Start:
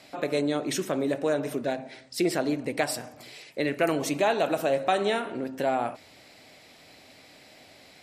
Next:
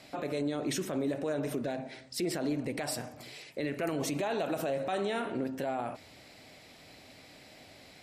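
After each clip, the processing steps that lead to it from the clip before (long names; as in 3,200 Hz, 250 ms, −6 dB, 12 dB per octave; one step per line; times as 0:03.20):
low-shelf EQ 190 Hz +6.5 dB
brickwall limiter −22 dBFS, peak gain reduction 11.5 dB
level −2 dB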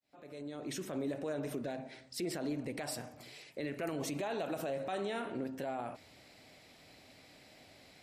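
fade in at the beginning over 0.99 s
level −5 dB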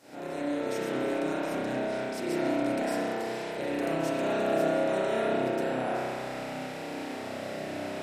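compressor on every frequency bin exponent 0.4
spring reverb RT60 2.3 s, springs 31 ms, chirp 65 ms, DRR −9 dB
level −6 dB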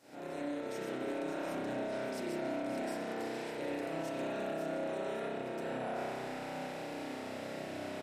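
brickwall limiter −24 dBFS, peak gain reduction 7.5 dB
single-tap delay 570 ms −9 dB
level −6 dB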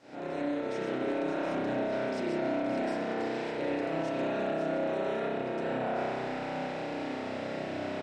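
high-frequency loss of the air 110 metres
level +6.5 dB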